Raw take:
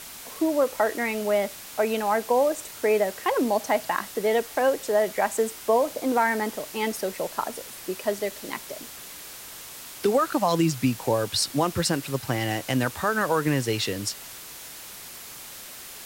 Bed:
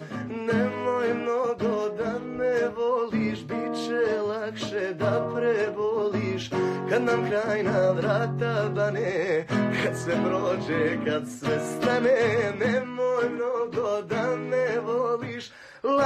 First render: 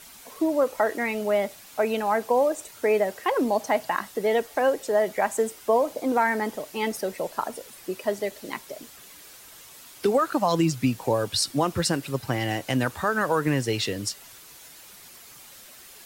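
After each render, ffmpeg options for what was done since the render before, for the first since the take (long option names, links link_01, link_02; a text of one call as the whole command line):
ffmpeg -i in.wav -af "afftdn=noise_reduction=8:noise_floor=-42" out.wav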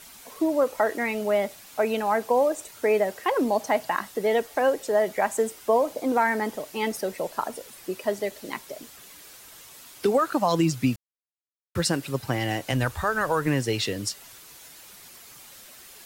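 ffmpeg -i in.wav -filter_complex "[0:a]asplit=3[link_01][link_02][link_03];[link_01]afade=type=out:start_time=12.71:duration=0.02[link_04];[link_02]asubboost=boost=9:cutoff=67,afade=type=in:start_time=12.71:duration=0.02,afade=type=out:start_time=13.46:duration=0.02[link_05];[link_03]afade=type=in:start_time=13.46:duration=0.02[link_06];[link_04][link_05][link_06]amix=inputs=3:normalize=0,asplit=3[link_07][link_08][link_09];[link_07]atrim=end=10.96,asetpts=PTS-STARTPTS,afade=type=out:start_time=10.956:duration=0.004:curve=hsin[link_10];[link_08]atrim=start=10.96:end=11.75,asetpts=PTS-STARTPTS,volume=0[link_11];[link_09]atrim=start=11.75,asetpts=PTS-STARTPTS,afade=type=in:duration=0.004:curve=hsin[link_12];[link_10][link_11][link_12]concat=n=3:v=0:a=1" out.wav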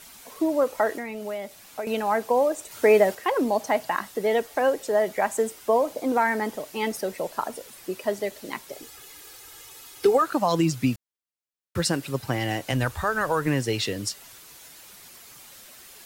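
ffmpeg -i in.wav -filter_complex "[0:a]asettb=1/sr,asplit=3[link_01][link_02][link_03];[link_01]atrim=end=0.964[link_04];[link_02]atrim=start=0.96:end=1.87,asetpts=PTS-STARTPTS,afade=type=in:duration=0.004:curve=qsin,afade=type=out:start_time=0.906:duration=0.004:curve=qsin,acrossover=split=780|2500[link_05][link_06][link_07];[link_05]acompressor=threshold=-33dB:ratio=4[link_08];[link_06]acompressor=threshold=-42dB:ratio=4[link_09];[link_07]acompressor=threshold=-46dB:ratio=4[link_10];[link_08][link_09][link_10]amix=inputs=3:normalize=0[link_11];[link_03]atrim=start=1.866[link_12];[link_04][link_11]acrossfade=duration=0.004:curve1=hsin:curve2=qsin[link_13];[link_13][link_12]acrossfade=duration=0.004:curve1=qsin:curve2=hsin,asettb=1/sr,asplit=3[link_14][link_15][link_16];[link_14]atrim=end=8.724[link_17];[link_15]atrim=start=8.72:end=10.22,asetpts=PTS-STARTPTS,afade=type=in:duration=0.004:curve=qsin,afade=type=out:start_time=1.496:duration=0.004:curve=qsin,aecho=1:1:2.4:0.65,atrim=end_sample=66150[link_18];[link_16]atrim=start=10.216[link_19];[link_17][link_18]acrossfade=duration=0.004:curve1=hsin:curve2=qsin[link_20];[link_20][link_19]acrossfade=duration=0.004:curve1=qsin:curve2=hsin,asplit=3[link_21][link_22][link_23];[link_21]atrim=end=2.712[link_24];[link_22]atrim=start=2.708:end=3.152,asetpts=PTS-STARTPTS,volume=5dB[link_25];[link_23]atrim=start=3.148[link_26];[link_24][link_25]acrossfade=duration=0.004:curve1=hsin:curve2=hsin[link_27];[link_27][link_26]acrossfade=duration=0.004:curve1=hsin:curve2=hsin" out.wav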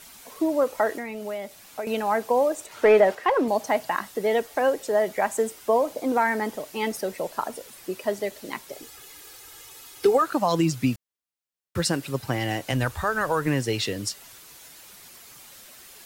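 ffmpeg -i in.wav -filter_complex "[0:a]asettb=1/sr,asplit=3[link_01][link_02][link_03];[link_01]atrim=end=2.664[link_04];[link_02]atrim=start=2.66:end=3.48,asetpts=PTS-STARTPTS,afade=type=in:duration=0.004:curve=qsin,afade=type=out:start_time=0.816:duration=0.004:curve=qsin,asplit=2[link_05][link_06];[link_06]highpass=frequency=720:poles=1,volume=12dB,asoftclip=type=tanh:threshold=-6.5dB[link_07];[link_05][link_07]amix=inputs=2:normalize=0,lowpass=frequency=1500:poles=1,volume=-6dB[link_08];[link_03]atrim=start=3.476[link_09];[link_04][link_08]acrossfade=duration=0.004:curve1=hsin:curve2=qsin[link_10];[link_10][link_09]acrossfade=duration=0.004:curve1=qsin:curve2=hsin" out.wav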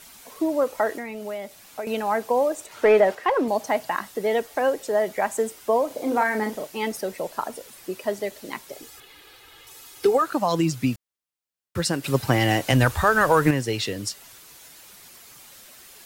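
ffmpeg -i in.wav -filter_complex "[0:a]asettb=1/sr,asplit=3[link_01][link_02][link_03];[link_01]atrim=end=5.874[link_04];[link_02]atrim=start=5.87:end=6.67,asetpts=PTS-STARTPTS,afade=type=in:duration=0.004:curve=qsin,afade=type=out:start_time=0.796:duration=0.004:curve=qsin,asplit=2[link_05][link_06];[link_06]adelay=37,volume=-6dB[link_07];[link_05][link_07]amix=inputs=2:normalize=0,atrim=end_sample=35280[link_08];[link_03]atrim=start=6.666[link_09];[link_04][link_08]acrossfade=duration=0.004:curve1=hsin:curve2=qsin[link_10];[link_10][link_09]acrossfade=duration=0.004:curve1=qsin:curve2=hsin,asettb=1/sr,asplit=3[link_11][link_12][link_13];[link_11]atrim=end=9.004[link_14];[link_12]atrim=start=9:end=9.67,asetpts=PTS-STARTPTS,afade=type=in:duration=0.004:curve=qsin,afade=type=out:start_time=0.666:duration=0.004:curve=qsin,highshelf=frequency=4700:width_type=q:width=1.5:gain=-9[link_15];[link_13]atrim=start=9.666[link_16];[link_14][link_15]acrossfade=duration=0.004:curve1=hsin:curve2=qsin[link_17];[link_17][link_16]acrossfade=duration=0.004:curve1=qsin:curve2=hsin,asettb=1/sr,asplit=3[link_18][link_19][link_20];[link_18]atrim=end=12.044[link_21];[link_19]atrim=start=12.04:end=13.51,asetpts=PTS-STARTPTS,afade=type=in:duration=0.004:curve=qsin,afade=type=out:start_time=1.466:duration=0.004:curve=qsin,acontrast=76[link_22];[link_20]atrim=start=13.506[link_23];[link_21][link_22]acrossfade=duration=0.004:curve1=hsin:curve2=qsin[link_24];[link_24][link_23]acrossfade=duration=0.004:curve1=qsin:curve2=hsin" out.wav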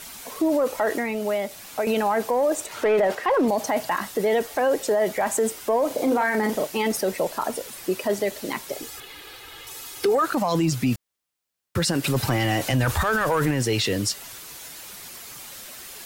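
ffmpeg -i in.wav -af "acontrast=86,alimiter=limit=-14.5dB:level=0:latency=1:release=13" out.wav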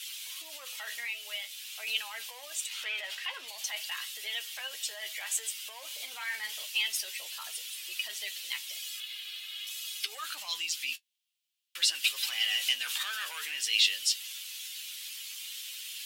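ffmpeg -i in.wav -af "flanger=delay=8.5:depth=4.4:regen=38:speed=0.5:shape=triangular,highpass=frequency=3000:width_type=q:width=3.2" out.wav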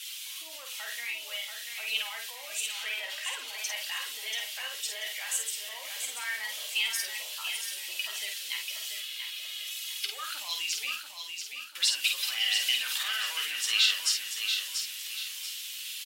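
ffmpeg -i in.wav -filter_complex "[0:a]asplit=2[link_01][link_02];[link_02]adelay=50,volume=-5dB[link_03];[link_01][link_03]amix=inputs=2:normalize=0,aecho=1:1:686|1372|2058|2744:0.473|0.175|0.0648|0.024" out.wav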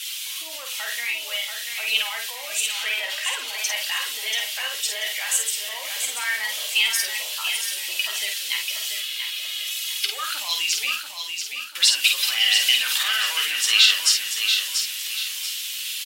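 ffmpeg -i in.wav -af "volume=9dB,alimiter=limit=-3dB:level=0:latency=1" out.wav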